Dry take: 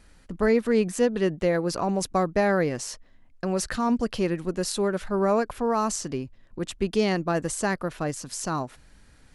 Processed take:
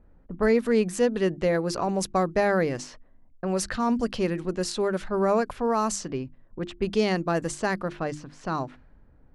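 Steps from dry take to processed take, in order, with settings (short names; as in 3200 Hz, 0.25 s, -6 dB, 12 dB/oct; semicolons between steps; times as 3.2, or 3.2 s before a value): notches 50/100/150/200/250/300/350 Hz; low-pass opened by the level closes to 670 Hz, open at -22 dBFS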